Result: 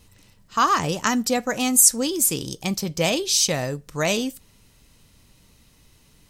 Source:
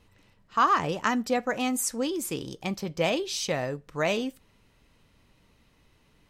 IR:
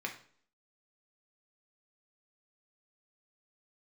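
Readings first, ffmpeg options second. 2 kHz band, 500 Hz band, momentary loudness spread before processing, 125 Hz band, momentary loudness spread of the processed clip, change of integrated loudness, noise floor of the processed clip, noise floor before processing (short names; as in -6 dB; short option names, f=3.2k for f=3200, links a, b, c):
+3.5 dB, +3.0 dB, 11 LU, +6.5 dB, 13 LU, +7.5 dB, -57 dBFS, -64 dBFS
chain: -af "bass=f=250:g=5,treble=f=4k:g=14,volume=2.5dB"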